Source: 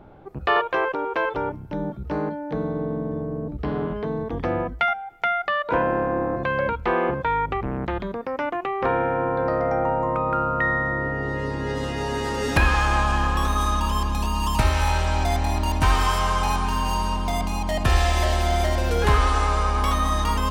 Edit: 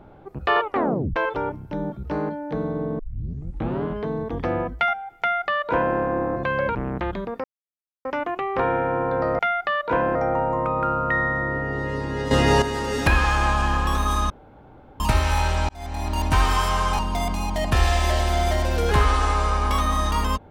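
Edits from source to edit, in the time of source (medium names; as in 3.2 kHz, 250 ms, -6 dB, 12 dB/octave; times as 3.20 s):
0.62 s: tape stop 0.54 s
2.99 s: tape start 0.84 s
5.20–5.96 s: copy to 9.65 s
6.75–7.62 s: delete
8.31 s: insert silence 0.61 s
11.81–12.12 s: gain +10 dB
13.80–14.50 s: room tone
15.19–15.73 s: fade in
16.49–17.12 s: delete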